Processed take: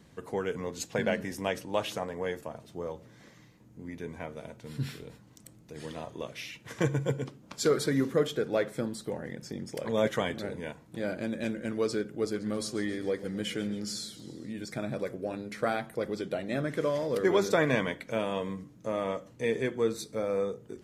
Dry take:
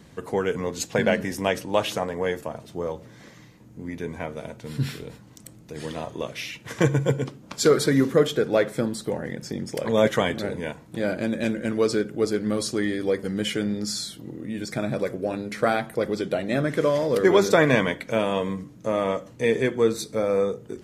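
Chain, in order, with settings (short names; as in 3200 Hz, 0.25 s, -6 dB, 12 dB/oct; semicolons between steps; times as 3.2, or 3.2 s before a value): 12.05–14.53 warbling echo 0.135 s, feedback 58%, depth 111 cents, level -16 dB; gain -7.5 dB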